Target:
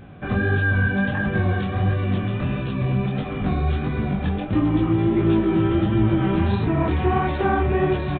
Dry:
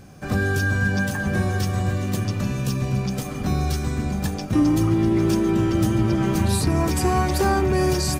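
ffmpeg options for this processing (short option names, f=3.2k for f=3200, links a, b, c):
-filter_complex "[0:a]asplit=2[a][b];[b]alimiter=limit=-19.5dB:level=0:latency=1,volume=0dB[c];[a][c]amix=inputs=2:normalize=0,flanger=delay=18:depth=7.4:speed=1.5,aresample=8000,aresample=44100"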